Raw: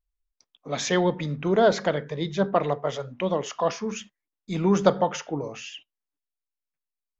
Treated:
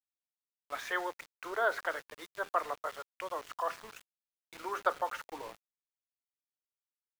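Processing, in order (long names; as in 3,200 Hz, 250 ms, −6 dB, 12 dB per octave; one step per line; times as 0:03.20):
Butterworth high-pass 260 Hz 72 dB per octave
band-pass filter sweep 1,400 Hz → 490 Hz, 0:05.15–0:06.16
centre clipping without the shift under −44.5 dBFS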